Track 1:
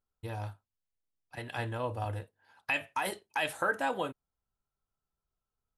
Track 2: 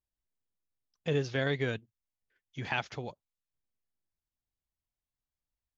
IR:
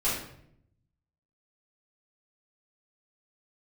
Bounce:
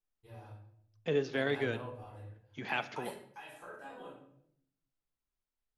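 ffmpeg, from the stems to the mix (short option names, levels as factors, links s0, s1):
-filter_complex "[0:a]acompressor=threshold=0.0251:ratio=6,volume=0.266,asplit=2[s0][s1];[s1]volume=0.299[s2];[1:a]highpass=f=170:w=0.5412,highpass=f=170:w=1.3066,highshelf=f=5900:g=-10.5,volume=0.841,asplit=3[s3][s4][s5];[s4]volume=0.0841[s6];[s5]apad=whole_len=254507[s7];[s0][s7]sidechaingate=range=0.0224:threshold=0.00158:ratio=16:detection=peak[s8];[2:a]atrim=start_sample=2205[s9];[s2][s6]amix=inputs=2:normalize=0[s10];[s10][s9]afir=irnorm=-1:irlink=0[s11];[s8][s3][s11]amix=inputs=3:normalize=0"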